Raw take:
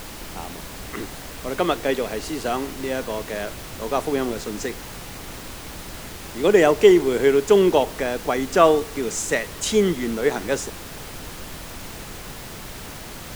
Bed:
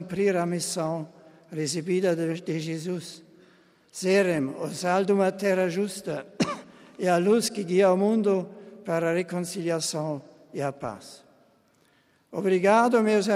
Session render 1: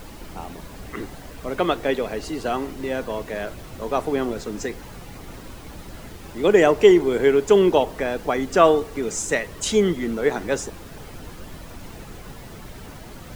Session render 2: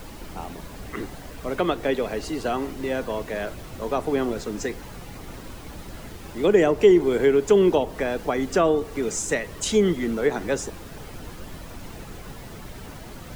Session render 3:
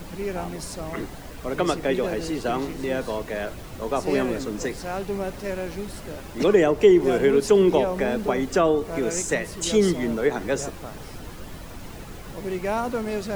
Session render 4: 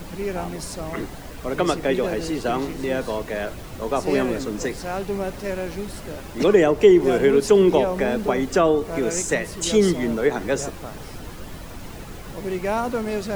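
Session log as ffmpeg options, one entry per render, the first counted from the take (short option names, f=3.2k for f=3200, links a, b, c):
-af "afftdn=nr=9:nf=-37"
-filter_complex "[0:a]acrossover=split=430[a][b];[b]acompressor=threshold=-24dB:ratio=2.5[c];[a][c]amix=inputs=2:normalize=0"
-filter_complex "[1:a]volume=-6.5dB[a];[0:a][a]amix=inputs=2:normalize=0"
-af "volume=2dB"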